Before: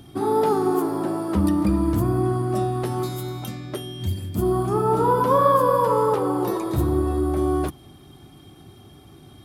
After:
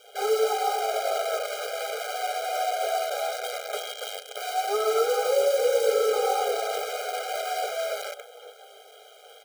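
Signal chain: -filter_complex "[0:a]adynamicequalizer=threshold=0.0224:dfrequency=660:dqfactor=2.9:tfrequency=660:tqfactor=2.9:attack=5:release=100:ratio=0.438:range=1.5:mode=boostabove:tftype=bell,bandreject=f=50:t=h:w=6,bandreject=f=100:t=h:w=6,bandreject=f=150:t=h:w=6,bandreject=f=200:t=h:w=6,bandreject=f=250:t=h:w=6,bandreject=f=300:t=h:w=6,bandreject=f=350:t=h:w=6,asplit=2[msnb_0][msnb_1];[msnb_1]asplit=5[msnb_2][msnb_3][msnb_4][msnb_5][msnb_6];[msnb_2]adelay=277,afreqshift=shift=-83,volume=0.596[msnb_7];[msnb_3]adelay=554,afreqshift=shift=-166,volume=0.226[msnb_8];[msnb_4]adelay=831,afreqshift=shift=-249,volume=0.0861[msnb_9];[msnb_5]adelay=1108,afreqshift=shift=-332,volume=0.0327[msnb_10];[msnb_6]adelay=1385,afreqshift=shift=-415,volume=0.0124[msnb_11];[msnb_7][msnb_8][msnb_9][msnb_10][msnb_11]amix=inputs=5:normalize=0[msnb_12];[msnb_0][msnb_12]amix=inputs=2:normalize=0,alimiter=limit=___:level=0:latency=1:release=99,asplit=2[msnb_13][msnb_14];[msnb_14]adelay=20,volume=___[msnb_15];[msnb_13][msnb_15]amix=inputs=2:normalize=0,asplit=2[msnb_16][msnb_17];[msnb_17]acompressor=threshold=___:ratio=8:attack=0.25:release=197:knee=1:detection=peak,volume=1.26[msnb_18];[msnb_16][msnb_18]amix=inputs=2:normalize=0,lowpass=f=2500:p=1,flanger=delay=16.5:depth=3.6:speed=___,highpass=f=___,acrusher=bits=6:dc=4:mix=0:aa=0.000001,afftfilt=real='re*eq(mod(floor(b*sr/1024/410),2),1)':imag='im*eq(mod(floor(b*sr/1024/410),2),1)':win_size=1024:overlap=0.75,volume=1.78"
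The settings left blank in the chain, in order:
0.168, 0.237, 0.02, 2.3, 160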